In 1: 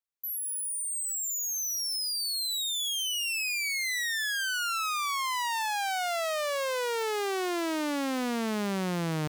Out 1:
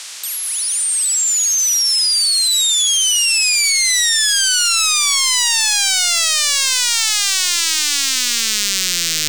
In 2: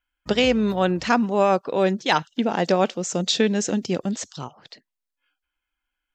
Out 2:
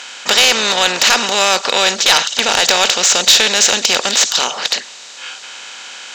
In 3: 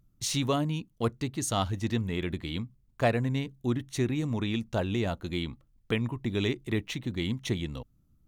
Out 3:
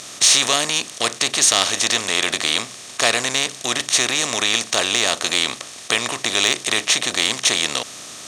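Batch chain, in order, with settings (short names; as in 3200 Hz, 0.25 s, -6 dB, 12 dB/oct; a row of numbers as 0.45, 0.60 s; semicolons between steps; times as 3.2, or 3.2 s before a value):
per-bin compression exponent 0.4; weighting filter ITU-R 468; soft clip -5 dBFS; normalise peaks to -1.5 dBFS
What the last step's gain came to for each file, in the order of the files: +3.5, +3.5, +5.0 dB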